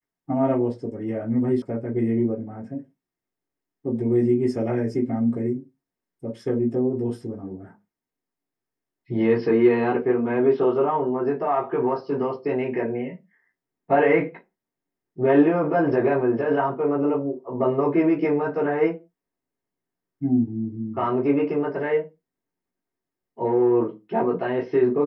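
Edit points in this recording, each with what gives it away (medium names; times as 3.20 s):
1.62 s: sound stops dead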